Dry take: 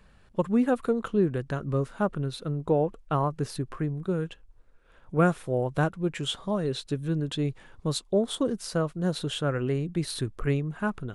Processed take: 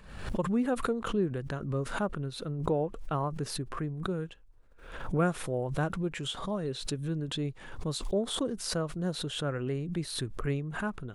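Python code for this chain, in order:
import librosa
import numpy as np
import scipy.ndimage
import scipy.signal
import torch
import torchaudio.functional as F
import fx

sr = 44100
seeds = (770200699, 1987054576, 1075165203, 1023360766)

y = fx.pre_swell(x, sr, db_per_s=68.0)
y = F.gain(torch.from_numpy(y), -5.5).numpy()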